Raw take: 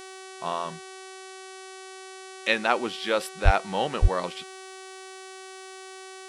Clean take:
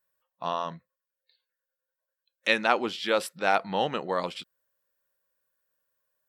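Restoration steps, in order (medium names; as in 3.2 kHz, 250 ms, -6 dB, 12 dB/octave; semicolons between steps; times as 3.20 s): de-hum 379 Hz, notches 28; 3.44–3.56 s: high-pass 140 Hz 24 dB/octave; 4.01–4.13 s: high-pass 140 Hz 24 dB/octave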